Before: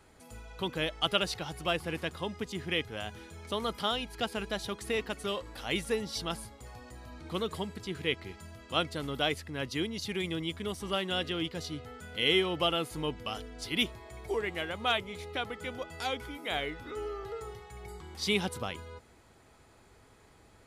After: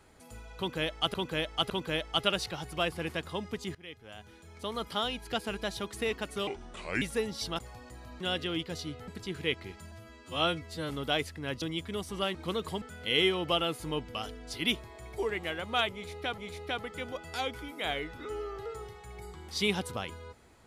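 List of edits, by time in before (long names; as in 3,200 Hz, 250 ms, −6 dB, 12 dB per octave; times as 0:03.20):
0:00.58–0:01.14: repeat, 3 plays
0:02.63–0:04.02: fade in linear, from −21 dB
0:05.35–0:05.76: play speed 75%
0:06.33–0:06.59: remove
0:07.21–0:07.68: swap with 0:11.06–0:11.93
0:08.52–0:09.01: time-stretch 2×
0:09.73–0:10.33: remove
0:15.04–0:15.49: repeat, 2 plays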